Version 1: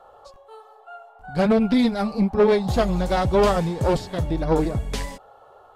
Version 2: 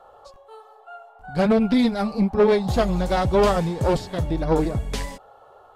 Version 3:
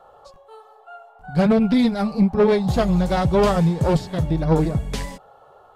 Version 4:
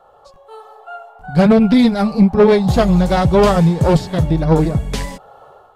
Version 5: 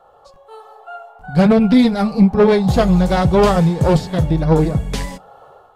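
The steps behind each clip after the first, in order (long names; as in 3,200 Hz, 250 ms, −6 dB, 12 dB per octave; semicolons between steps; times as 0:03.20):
no processing that can be heard
parametric band 160 Hz +8.5 dB 0.53 octaves
automatic gain control gain up to 9 dB
convolution reverb RT60 0.30 s, pre-delay 3 ms, DRR 16 dB; level −1 dB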